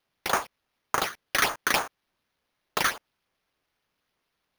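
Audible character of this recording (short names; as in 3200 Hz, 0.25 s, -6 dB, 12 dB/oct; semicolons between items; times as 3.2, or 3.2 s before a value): phasing stages 12, 3.4 Hz, lowest notch 770–4600 Hz; aliases and images of a low sample rate 7800 Hz, jitter 0%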